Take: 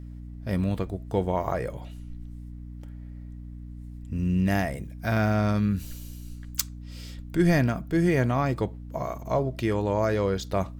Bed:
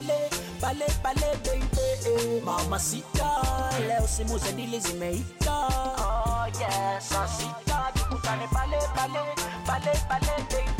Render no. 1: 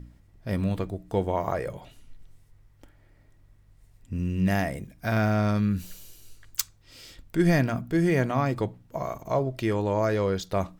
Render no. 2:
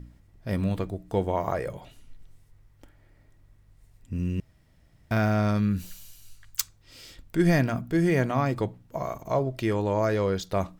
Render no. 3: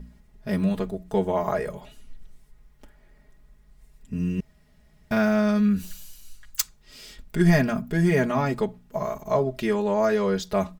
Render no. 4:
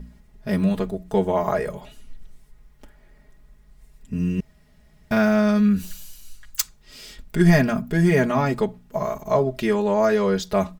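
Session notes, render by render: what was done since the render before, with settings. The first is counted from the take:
hum removal 60 Hz, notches 5
0:04.40–0:05.11: fill with room tone; 0:05.89–0:06.60: parametric band 390 Hz −14.5 dB 0.97 octaves
comb filter 4.8 ms, depth 96%
level +3 dB; brickwall limiter −2 dBFS, peak gain reduction 1.5 dB

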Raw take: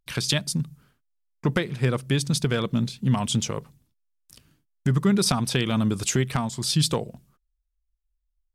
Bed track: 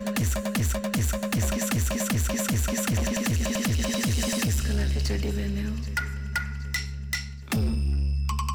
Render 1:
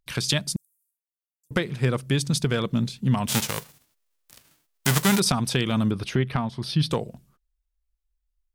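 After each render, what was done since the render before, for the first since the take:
0:00.56–0:01.51: inverse Chebyshev high-pass filter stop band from 2,200 Hz, stop band 70 dB
0:03.27–0:05.18: spectral envelope flattened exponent 0.3
0:05.91–0:06.91: moving average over 6 samples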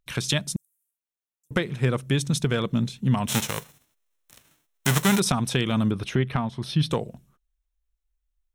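parametric band 15,000 Hz −3 dB 1 octave
notch filter 4,700 Hz, Q 5.4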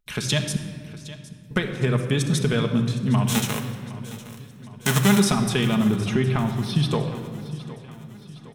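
repeating echo 763 ms, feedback 54%, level −17 dB
rectangular room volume 3,700 cubic metres, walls mixed, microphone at 1.4 metres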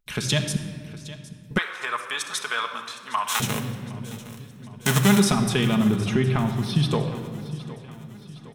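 0:01.58–0:03.40: high-pass with resonance 1,100 Hz, resonance Q 2.7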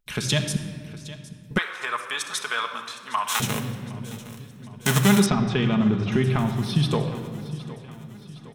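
0:05.26–0:06.12: high-frequency loss of the air 180 metres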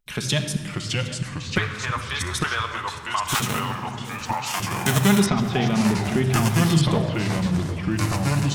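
delay with pitch and tempo change per echo 556 ms, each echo −3 semitones, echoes 3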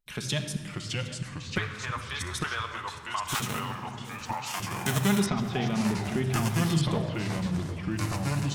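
level −7 dB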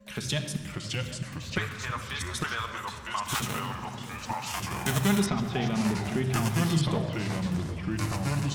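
mix in bed track −22.5 dB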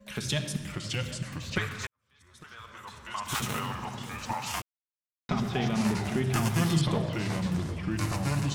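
0:01.87–0:03.49: fade in quadratic
0:04.62–0:05.29: silence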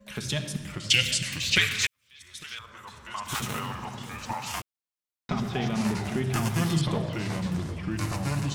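0:00.90–0:02.59: high shelf with overshoot 1,700 Hz +13 dB, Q 1.5

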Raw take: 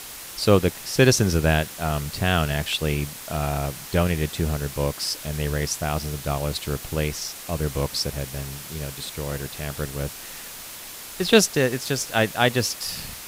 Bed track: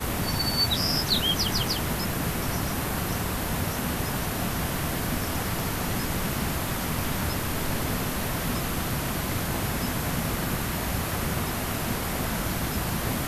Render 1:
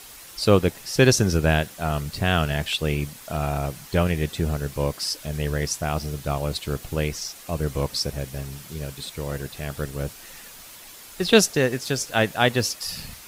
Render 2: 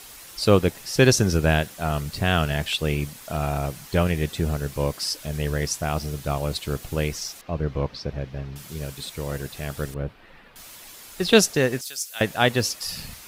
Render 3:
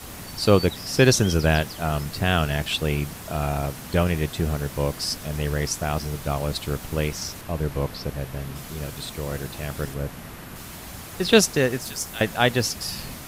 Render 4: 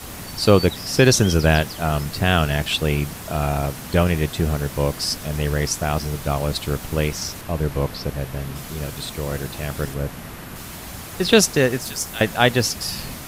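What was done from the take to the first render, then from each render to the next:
broadband denoise 7 dB, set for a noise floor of −39 dBFS
0:07.41–0:08.56: high-frequency loss of the air 260 metres; 0:09.94–0:10.56: high-frequency loss of the air 430 metres; 0:11.81–0:12.21: first difference
mix in bed track −11.5 dB
level +3.5 dB; brickwall limiter −1 dBFS, peak gain reduction 2.5 dB

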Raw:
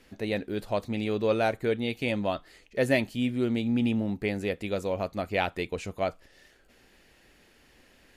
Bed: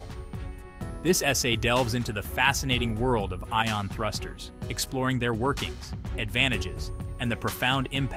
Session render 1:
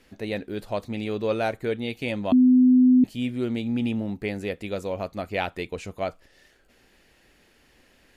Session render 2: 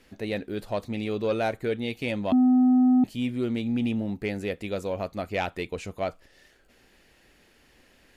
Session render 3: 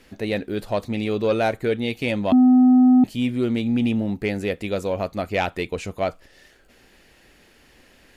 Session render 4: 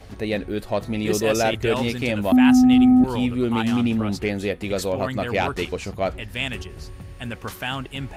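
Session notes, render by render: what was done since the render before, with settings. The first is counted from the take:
0:02.32–0:03.04: beep over 253 Hz −12.5 dBFS
soft clipping −15.5 dBFS, distortion −16 dB
level +5.5 dB
mix in bed −3 dB

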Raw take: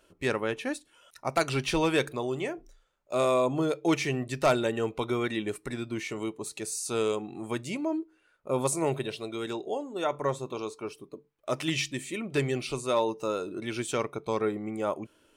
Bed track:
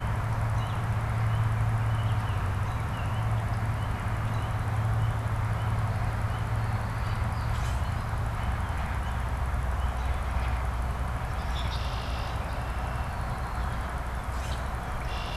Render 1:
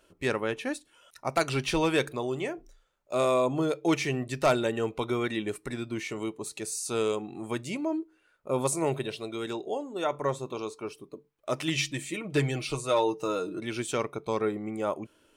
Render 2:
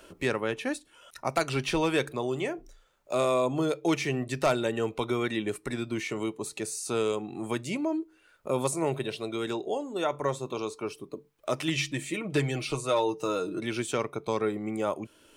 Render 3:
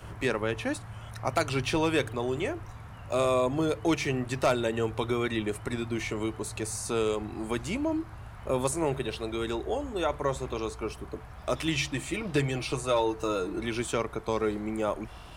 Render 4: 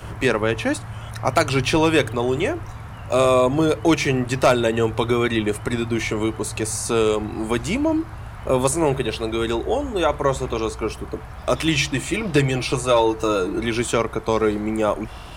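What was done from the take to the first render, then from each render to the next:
0:11.77–0:13.59: comb filter 6.4 ms, depth 59%
multiband upward and downward compressor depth 40%
mix in bed track −14 dB
level +9 dB

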